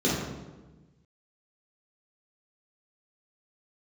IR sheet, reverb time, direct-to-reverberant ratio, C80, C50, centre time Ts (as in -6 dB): 1.2 s, -7.5 dB, 3.5 dB, 1.0 dB, 69 ms